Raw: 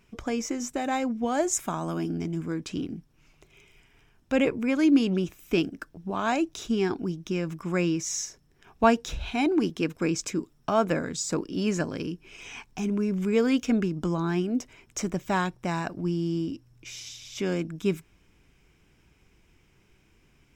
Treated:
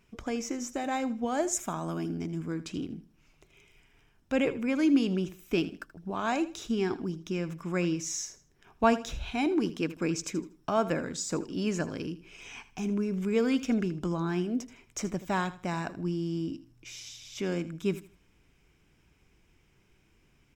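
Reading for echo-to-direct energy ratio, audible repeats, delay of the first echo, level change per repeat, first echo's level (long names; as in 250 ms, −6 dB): −15.0 dB, 2, 79 ms, −11.5 dB, −15.5 dB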